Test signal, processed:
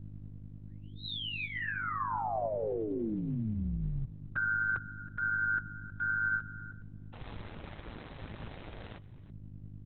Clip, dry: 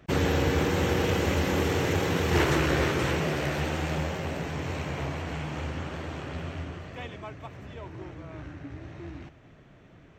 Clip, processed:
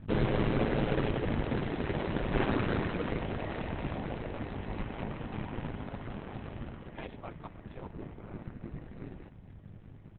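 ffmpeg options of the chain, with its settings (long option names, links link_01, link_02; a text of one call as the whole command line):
ffmpeg -i in.wav -filter_complex "[0:a]lowpass=frequency=1300:poles=1,aemphasis=mode=production:type=50kf,asplit=2[link_01][link_02];[link_02]alimiter=limit=-24dB:level=0:latency=1:release=30,volume=-2.5dB[link_03];[link_01][link_03]amix=inputs=2:normalize=0,acontrast=24,aeval=exprs='val(0)+0.0224*(sin(2*PI*50*n/s)+sin(2*PI*2*50*n/s)/2+sin(2*PI*3*50*n/s)/3+sin(2*PI*4*50*n/s)/4+sin(2*PI*5*50*n/s)/5)':channel_layout=same,aeval=exprs='val(0)*sin(2*PI*55*n/s)':channel_layout=same,aecho=1:1:320:0.133,volume=-6.5dB" -ar 48000 -c:a libopus -b:a 6k out.opus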